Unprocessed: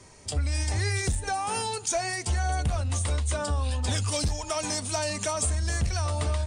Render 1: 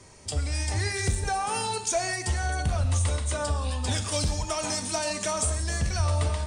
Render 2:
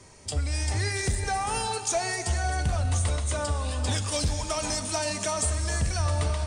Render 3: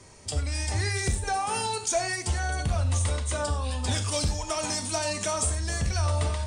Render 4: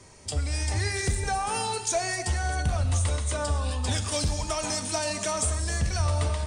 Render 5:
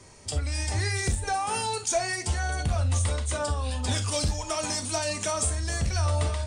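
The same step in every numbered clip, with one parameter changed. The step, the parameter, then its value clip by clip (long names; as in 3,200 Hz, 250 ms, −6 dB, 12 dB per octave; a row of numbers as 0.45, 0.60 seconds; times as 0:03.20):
reverb whose tail is shaped and stops, gate: 200, 520, 120, 290, 80 milliseconds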